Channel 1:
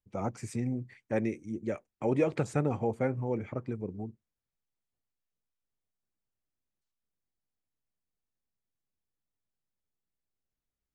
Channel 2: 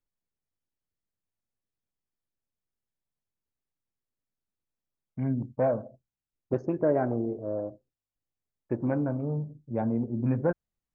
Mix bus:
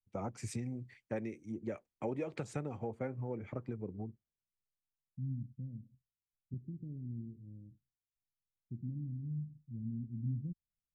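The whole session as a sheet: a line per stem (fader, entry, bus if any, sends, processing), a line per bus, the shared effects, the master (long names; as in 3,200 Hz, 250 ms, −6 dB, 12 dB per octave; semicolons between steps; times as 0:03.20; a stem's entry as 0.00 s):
−0.5 dB, 0.00 s, no send, downward compressor 8 to 1, threshold −35 dBFS, peak gain reduction 13.5 dB; multiband upward and downward expander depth 70%
−7.0 dB, 0.00 s, no send, inverse Chebyshev low-pass filter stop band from 680 Hz, stop band 60 dB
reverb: not used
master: high-shelf EQ 5,500 Hz −7.5 dB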